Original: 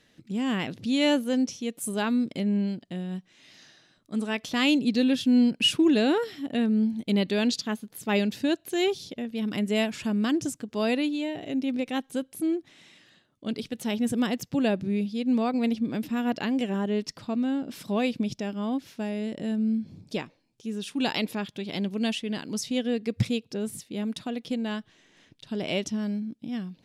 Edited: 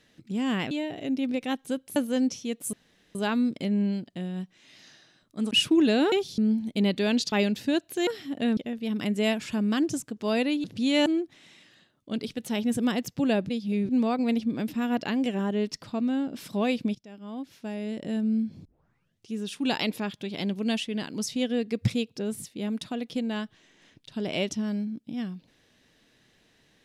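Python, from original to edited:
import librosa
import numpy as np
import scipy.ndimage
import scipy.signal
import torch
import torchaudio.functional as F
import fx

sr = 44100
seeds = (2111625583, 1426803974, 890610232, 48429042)

y = fx.edit(x, sr, fx.swap(start_s=0.71, length_s=0.42, other_s=11.16, other_length_s=1.25),
    fx.insert_room_tone(at_s=1.9, length_s=0.42),
    fx.cut(start_s=4.26, length_s=1.33),
    fx.swap(start_s=6.2, length_s=0.5, other_s=8.83, other_length_s=0.26),
    fx.cut(start_s=7.64, length_s=0.44),
    fx.reverse_span(start_s=14.84, length_s=0.4),
    fx.fade_in_from(start_s=18.3, length_s=1.16, floor_db=-22.5),
    fx.tape_start(start_s=20.0, length_s=0.67), tone=tone)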